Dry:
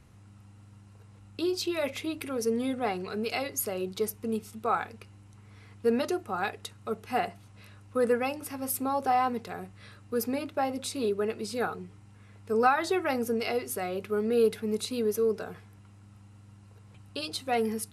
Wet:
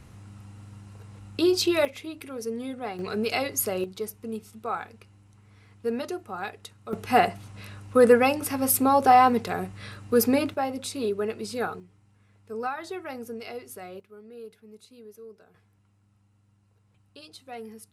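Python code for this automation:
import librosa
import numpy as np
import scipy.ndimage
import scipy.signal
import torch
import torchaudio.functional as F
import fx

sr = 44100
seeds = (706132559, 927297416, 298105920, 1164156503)

y = fx.gain(x, sr, db=fx.steps((0.0, 7.5), (1.85, -4.0), (2.99, 4.5), (3.84, -3.0), (6.93, 9.0), (10.54, 1.0), (11.8, -8.0), (14.0, -19.0), (15.54, -12.0)))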